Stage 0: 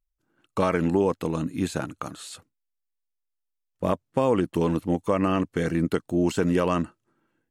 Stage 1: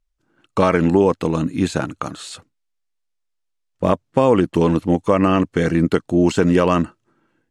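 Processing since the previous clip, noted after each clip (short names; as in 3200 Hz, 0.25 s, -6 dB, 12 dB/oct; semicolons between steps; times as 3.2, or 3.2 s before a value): LPF 8000 Hz 12 dB/oct; gain +7.5 dB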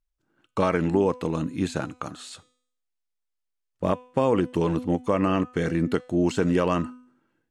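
de-hum 250 Hz, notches 38; gain -7 dB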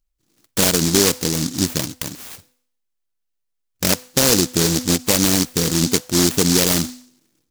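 noise-modulated delay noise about 5500 Hz, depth 0.35 ms; gain +6 dB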